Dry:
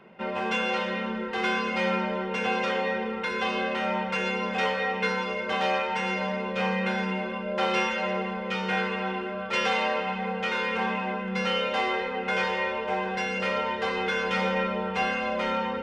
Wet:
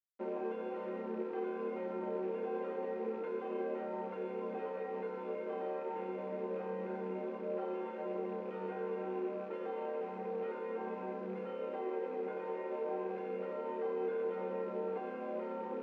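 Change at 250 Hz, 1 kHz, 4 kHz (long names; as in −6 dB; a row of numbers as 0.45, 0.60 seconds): −11.0 dB, −15.5 dB, below −30 dB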